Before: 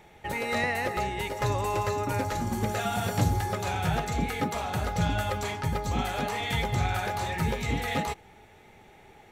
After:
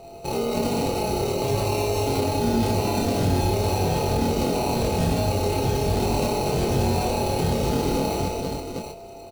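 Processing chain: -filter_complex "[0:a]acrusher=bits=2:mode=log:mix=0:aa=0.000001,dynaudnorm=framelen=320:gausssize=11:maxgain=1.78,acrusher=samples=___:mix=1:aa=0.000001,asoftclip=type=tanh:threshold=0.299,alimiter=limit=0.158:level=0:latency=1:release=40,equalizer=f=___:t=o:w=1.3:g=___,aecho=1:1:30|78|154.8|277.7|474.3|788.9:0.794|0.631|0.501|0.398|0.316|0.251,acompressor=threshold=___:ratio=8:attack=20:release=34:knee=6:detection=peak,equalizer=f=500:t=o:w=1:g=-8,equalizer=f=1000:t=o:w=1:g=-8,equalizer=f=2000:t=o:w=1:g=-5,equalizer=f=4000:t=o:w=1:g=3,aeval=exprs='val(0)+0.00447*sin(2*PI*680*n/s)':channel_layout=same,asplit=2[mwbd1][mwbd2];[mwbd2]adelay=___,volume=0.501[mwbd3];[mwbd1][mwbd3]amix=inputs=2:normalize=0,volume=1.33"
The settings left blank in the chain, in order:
26, 500, 14.5, 0.0794, 22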